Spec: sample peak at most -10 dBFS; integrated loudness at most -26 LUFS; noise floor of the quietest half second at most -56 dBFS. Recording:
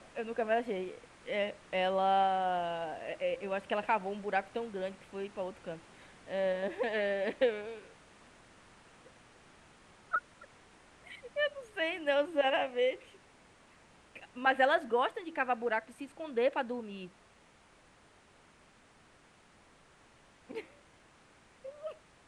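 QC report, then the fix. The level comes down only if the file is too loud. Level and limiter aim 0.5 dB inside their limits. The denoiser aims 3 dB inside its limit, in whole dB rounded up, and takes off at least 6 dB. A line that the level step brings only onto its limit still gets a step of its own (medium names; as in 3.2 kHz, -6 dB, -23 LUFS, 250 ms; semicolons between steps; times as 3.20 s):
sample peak -14.5 dBFS: pass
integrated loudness -33.5 LUFS: pass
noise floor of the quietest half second -63 dBFS: pass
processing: none needed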